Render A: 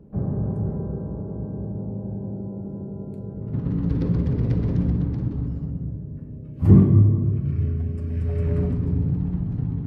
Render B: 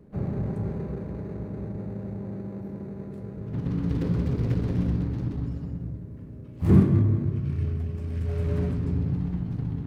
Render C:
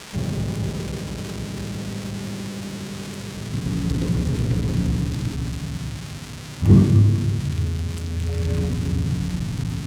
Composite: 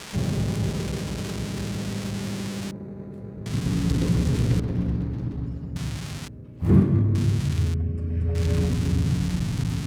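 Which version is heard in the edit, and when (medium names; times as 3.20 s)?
C
2.71–3.46 s: from B
4.60–5.76 s: from B
6.28–7.15 s: from B
7.74–8.35 s: from A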